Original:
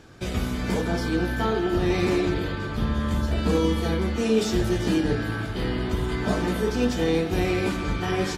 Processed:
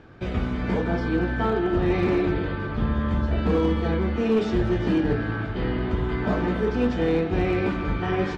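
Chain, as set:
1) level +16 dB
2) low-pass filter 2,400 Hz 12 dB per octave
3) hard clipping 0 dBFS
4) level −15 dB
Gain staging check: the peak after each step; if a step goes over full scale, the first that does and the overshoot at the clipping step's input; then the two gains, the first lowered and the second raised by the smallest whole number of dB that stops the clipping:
+7.0, +6.5, 0.0, −15.0 dBFS
step 1, 6.5 dB
step 1 +9 dB, step 4 −8 dB

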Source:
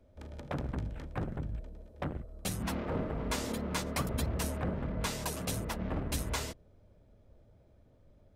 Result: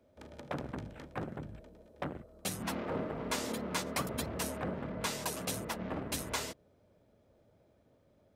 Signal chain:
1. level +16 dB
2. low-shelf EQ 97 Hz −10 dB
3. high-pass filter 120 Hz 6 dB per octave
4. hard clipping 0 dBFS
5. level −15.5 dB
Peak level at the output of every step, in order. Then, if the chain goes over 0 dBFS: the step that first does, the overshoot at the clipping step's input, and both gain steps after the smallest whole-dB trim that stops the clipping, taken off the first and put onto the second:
−4.0, −4.0, −4.5, −4.5, −20.0 dBFS
no step passes full scale

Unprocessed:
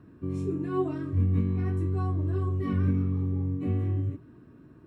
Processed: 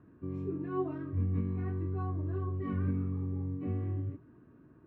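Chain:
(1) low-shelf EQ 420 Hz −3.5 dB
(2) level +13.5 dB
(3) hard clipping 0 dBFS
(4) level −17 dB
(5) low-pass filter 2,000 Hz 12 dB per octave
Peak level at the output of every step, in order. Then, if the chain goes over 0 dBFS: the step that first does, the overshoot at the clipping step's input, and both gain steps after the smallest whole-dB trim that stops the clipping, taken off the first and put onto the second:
−17.5, −4.0, −4.0, −21.0, −21.0 dBFS
no step passes full scale

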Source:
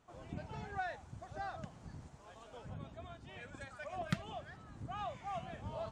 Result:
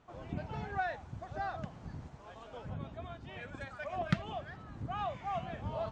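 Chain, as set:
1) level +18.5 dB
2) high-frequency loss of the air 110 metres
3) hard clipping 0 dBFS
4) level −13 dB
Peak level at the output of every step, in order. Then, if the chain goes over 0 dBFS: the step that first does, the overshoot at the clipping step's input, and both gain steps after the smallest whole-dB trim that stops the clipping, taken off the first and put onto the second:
−3.0, −3.0, −3.0, −16.0 dBFS
no step passes full scale

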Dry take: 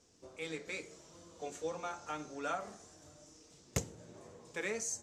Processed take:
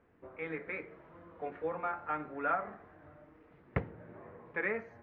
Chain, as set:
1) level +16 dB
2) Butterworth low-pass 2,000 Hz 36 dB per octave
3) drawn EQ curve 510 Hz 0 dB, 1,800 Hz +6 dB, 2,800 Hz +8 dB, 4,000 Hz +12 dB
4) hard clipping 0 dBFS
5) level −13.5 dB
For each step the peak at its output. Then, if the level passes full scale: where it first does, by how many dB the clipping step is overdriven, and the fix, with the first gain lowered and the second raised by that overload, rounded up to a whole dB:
−8.0, −7.0, −5.0, −5.0, −18.5 dBFS
no step passes full scale

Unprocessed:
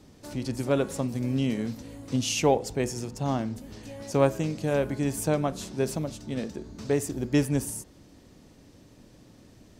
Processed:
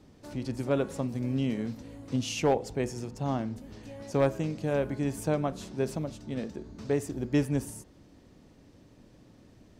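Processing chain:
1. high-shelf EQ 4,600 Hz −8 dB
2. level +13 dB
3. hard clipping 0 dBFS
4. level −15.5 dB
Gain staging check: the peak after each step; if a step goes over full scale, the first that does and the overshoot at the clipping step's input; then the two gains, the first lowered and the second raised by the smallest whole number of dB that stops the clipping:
−8.5, +4.5, 0.0, −15.5 dBFS
step 2, 4.5 dB
step 2 +8 dB, step 4 −10.5 dB

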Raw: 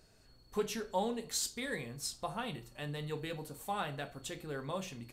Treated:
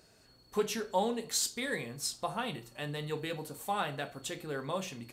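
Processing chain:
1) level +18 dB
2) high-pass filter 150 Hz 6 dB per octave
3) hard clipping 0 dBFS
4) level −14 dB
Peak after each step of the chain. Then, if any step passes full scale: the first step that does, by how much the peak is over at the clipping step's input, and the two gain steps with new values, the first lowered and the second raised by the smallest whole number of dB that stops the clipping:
−4.0, −4.0, −4.0, −18.0 dBFS
no step passes full scale

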